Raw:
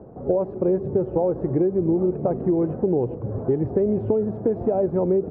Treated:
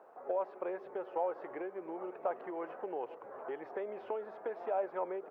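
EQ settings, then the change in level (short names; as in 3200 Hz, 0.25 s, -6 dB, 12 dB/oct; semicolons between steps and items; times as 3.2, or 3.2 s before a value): HPF 1100 Hz 12 dB/oct; LPF 1500 Hz 6 dB/oct; tilt +4.5 dB/oct; +4.5 dB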